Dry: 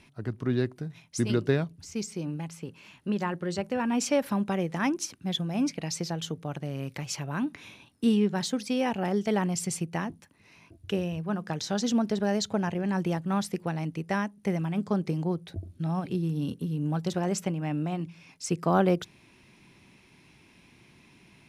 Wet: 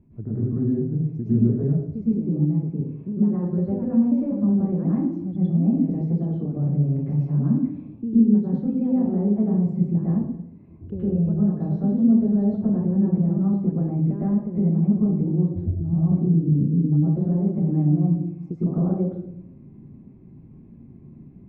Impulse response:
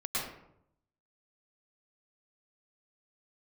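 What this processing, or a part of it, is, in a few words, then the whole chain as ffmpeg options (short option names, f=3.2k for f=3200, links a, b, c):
television next door: -filter_complex "[0:a]acompressor=threshold=-30dB:ratio=5,lowpass=270[a];[1:a]atrim=start_sample=2205[b];[a][b]afir=irnorm=-1:irlink=0,volume=9dB"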